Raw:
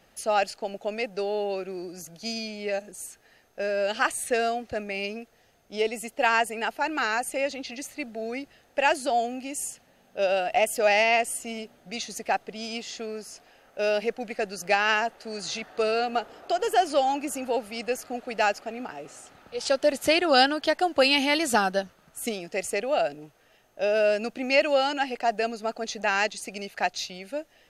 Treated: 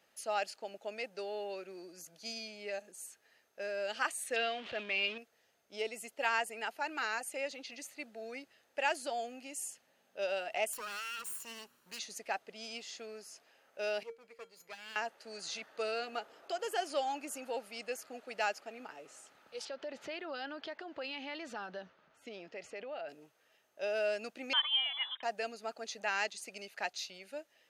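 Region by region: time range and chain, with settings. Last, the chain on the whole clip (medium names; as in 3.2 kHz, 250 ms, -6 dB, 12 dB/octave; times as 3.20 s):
4.36–5.18 s: jump at every zero crossing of -34.5 dBFS + resonant low-pass 3.2 kHz, resonance Q 3.6
10.73–11.99 s: comb filter that takes the minimum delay 0.71 ms + treble shelf 8.3 kHz +11.5 dB + compression, threshold -29 dBFS
14.03–14.96 s: comb filter that takes the minimum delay 0.44 ms + feedback comb 460 Hz, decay 0.18 s, harmonics odd, mix 80%
19.65–23.09 s: compression 3:1, threshold -28 dBFS + distance through air 220 m + transient shaper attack -1 dB, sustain +5 dB
24.53–25.23 s: distance through air 280 m + frequency inversion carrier 3.7 kHz
whole clip: high-pass 510 Hz 6 dB/octave; band-stop 740 Hz, Q 12; trim -8.5 dB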